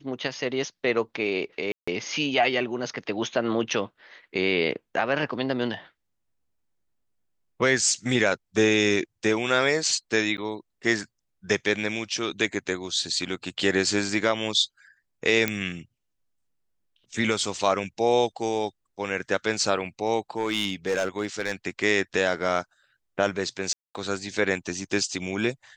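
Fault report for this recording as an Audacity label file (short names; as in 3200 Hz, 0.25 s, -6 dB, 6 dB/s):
1.720000	1.880000	gap 0.155 s
10.370000	10.380000	gap 9.6 ms
15.480000	15.480000	pop -8 dBFS
20.370000	21.530000	clipped -19.5 dBFS
23.730000	23.950000	gap 0.218 s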